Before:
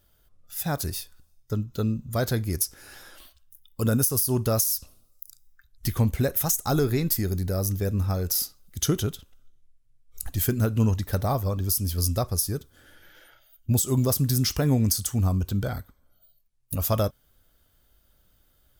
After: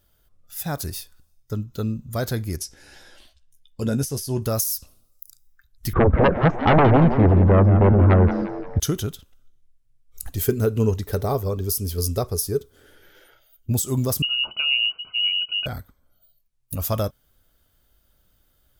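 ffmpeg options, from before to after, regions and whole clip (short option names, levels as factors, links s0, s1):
-filter_complex "[0:a]asettb=1/sr,asplit=3[s0][s1][s2];[s0]atrim=end=2.574[s3];[s1]atrim=start=2.57:end=4.42,asetpts=PTS-STARTPTS,afade=t=in:d=0.004:c=qsin,afade=t=out:st=1.846:d=0.004:c=qsin,lowpass=7300,equalizer=f=1200:t=o:w=0.33:g=-11,asplit=2[s4][s5];[s5]adelay=14,volume=0.355[s6];[s4][s6]amix=inputs=2:normalize=0,atrim=end_sample=81585[s7];[s2]atrim=start=4.416[s8];[s3][s7]acrossfade=d=0.004:c1=hsin:c2=qsin[s9];[s9][s8]acrossfade=d=0.004:c1=qsin:c2=hsin,asettb=1/sr,asplit=3[s10][s11][s12];[s10]atrim=end=5.934[s13];[s11]atrim=start=5.93:end=8.8,asetpts=PTS-STARTPTS,afade=t=in:d=0.004:c=qsin,afade=t=out:st=2.866:d=0.004:c=qsin,lowpass=f=1500:w=0.5412,lowpass=f=1500:w=1.3066,aeval=exprs='0.282*sin(PI/2*3.98*val(0)/0.282)':c=same,asplit=5[s14][s15][s16][s17][s18];[s15]adelay=174,afreqshift=120,volume=0.299[s19];[s16]adelay=348,afreqshift=240,volume=0.126[s20];[s17]adelay=522,afreqshift=360,volume=0.0525[s21];[s18]adelay=696,afreqshift=480,volume=0.0221[s22];[s14][s19][s20][s21][s22]amix=inputs=5:normalize=0,atrim=end_sample=126567[s23];[s12]atrim=start=8.796[s24];[s13][s23]acrossfade=d=0.004:c1=hsin:c2=qsin[s25];[s25][s24]acrossfade=d=0.004:c1=qsin:c2=hsin,asettb=1/sr,asplit=3[s26][s27][s28];[s26]atrim=end=10.344[s29];[s27]atrim=start=10.34:end=13.72,asetpts=PTS-STARTPTS,afade=t=in:d=0.004:c=qsin,afade=t=out:st=3.376:d=0.004:c=qsin,equalizer=f=420:w=4.7:g=14.5,bandreject=f=1700:w=25[s30];[s28]atrim=start=13.716[s31];[s29][s30]acrossfade=d=0.004:c1=hsin:c2=qsin[s32];[s32][s31]acrossfade=d=0.004:c1=qsin:c2=hsin,asettb=1/sr,asplit=3[s33][s34][s35];[s33]atrim=end=14.224[s36];[s34]atrim=start=14.22:end=15.66,asetpts=PTS-STARTPTS,afade=t=in:d=0.004:c=qsin,afade=t=out:st=1.436:d=0.004:c=qsin,asuperstop=centerf=1200:order=12:qfactor=2.6,equalizer=f=910:w=1.5:g=-8.5,lowpass=f=2600:t=q:w=0.5098,lowpass=f=2600:t=q:w=0.6013,lowpass=f=2600:t=q:w=0.9,lowpass=f=2600:t=q:w=2.563,afreqshift=-3000[s37];[s35]atrim=start=15.656[s38];[s36][s37]acrossfade=d=0.004:c1=hsin:c2=qsin[s39];[s39][s38]acrossfade=d=0.004:c1=qsin:c2=hsin"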